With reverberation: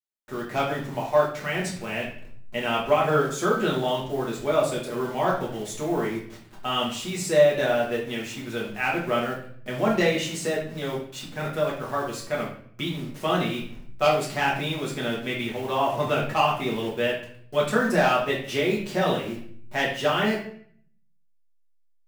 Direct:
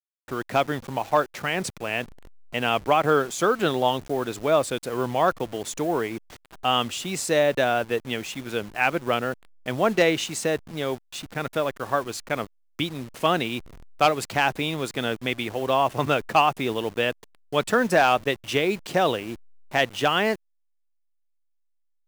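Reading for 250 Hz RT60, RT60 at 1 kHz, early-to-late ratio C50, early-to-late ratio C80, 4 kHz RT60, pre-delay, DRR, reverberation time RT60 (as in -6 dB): 0.80 s, 0.55 s, 5.5 dB, 9.5 dB, 0.50 s, 5 ms, -5.5 dB, 0.55 s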